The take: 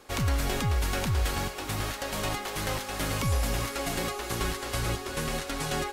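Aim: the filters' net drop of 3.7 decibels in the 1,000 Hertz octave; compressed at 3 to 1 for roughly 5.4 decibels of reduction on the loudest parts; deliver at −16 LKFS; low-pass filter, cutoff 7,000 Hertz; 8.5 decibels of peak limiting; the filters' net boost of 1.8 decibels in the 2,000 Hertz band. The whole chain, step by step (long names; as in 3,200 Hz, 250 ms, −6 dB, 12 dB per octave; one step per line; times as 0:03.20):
low-pass filter 7,000 Hz
parametric band 1,000 Hz −6 dB
parametric band 2,000 Hz +4 dB
downward compressor 3 to 1, threshold −30 dBFS
level +20.5 dB
brickwall limiter −7 dBFS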